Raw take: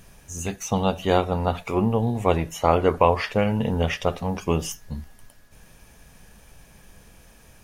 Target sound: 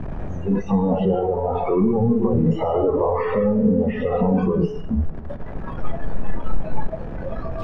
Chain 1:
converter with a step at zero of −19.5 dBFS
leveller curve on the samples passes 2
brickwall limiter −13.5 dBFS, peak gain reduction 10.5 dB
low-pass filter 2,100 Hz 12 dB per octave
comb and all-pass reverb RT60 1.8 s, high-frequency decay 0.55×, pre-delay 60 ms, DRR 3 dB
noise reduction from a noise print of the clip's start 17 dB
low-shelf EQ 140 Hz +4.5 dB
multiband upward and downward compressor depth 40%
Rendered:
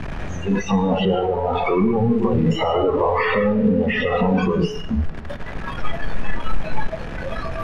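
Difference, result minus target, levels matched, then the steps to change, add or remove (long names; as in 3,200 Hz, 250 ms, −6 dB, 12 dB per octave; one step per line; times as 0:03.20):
2,000 Hz band +12.0 dB
change: low-pass filter 810 Hz 12 dB per octave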